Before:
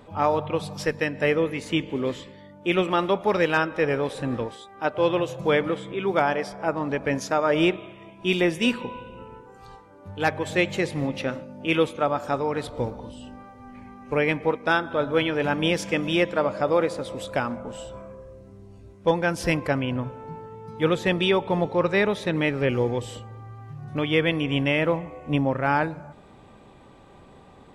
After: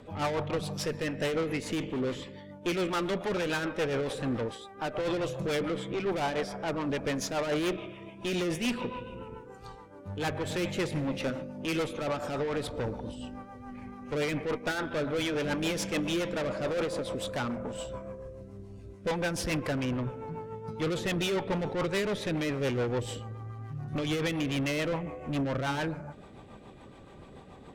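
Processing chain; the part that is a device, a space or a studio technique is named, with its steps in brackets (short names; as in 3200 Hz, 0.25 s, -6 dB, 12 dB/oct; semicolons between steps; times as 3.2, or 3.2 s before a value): overdriven rotary cabinet (tube stage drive 29 dB, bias 0.4; rotary speaker horn 7 Hz); gain +3.5 dB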